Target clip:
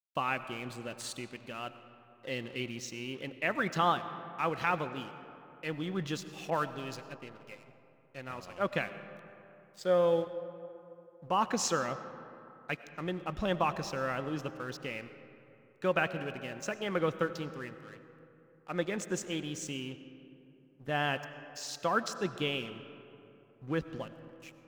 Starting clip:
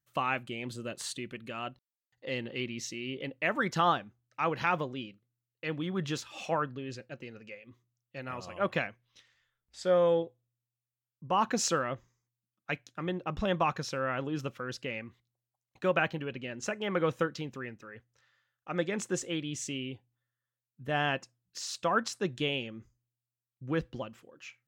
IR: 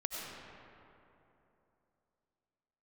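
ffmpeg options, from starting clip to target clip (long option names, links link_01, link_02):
-filter_complex "[0:a]aeval=exprs='sgn(val(0))*max(abs(val(0))-0.00266,0)':channel_layout=same,asplit=2[link_01][link_02];[1:a]atrim=start_sample=2205[link_03];[link_02][link_03]afir=irnorm=-1:irlink=0,volume=-10.5dB[link_04];[link_01][link_04]amix=inputs=2:normalize=0,asettb=1/sr,asplit=3[link_05][link_06][link_07];[link_05]atrim=end=6.504[link_08];[link_06]atrim=start=6.5:end=7.13,asetpts=PTS-STARTPTS,afade=type=in:duration=0.004:curve=qsin,afade=type=out:start_time=0.626:duration=0.004:curve=qsin,adynamicequalizer=threshold=0.00631:dfrequency=1900:dqfactor=0.7:tfrequency=1900:tqfactor=0.7:attack=5:release=100:ratio=0.375:range=3.5:mode=boostabove:tftype=highshelf[link_09];[link_07]atrim=start=7.126[link_10];[link_08][link_09]acrossfade=duration=0.004:curve1=hsin:curve2=qsin[link_11];[link_11][link_10]acrossfade=duration=0.004:curve1=qsin:curve2=hsin,volume=-3dB"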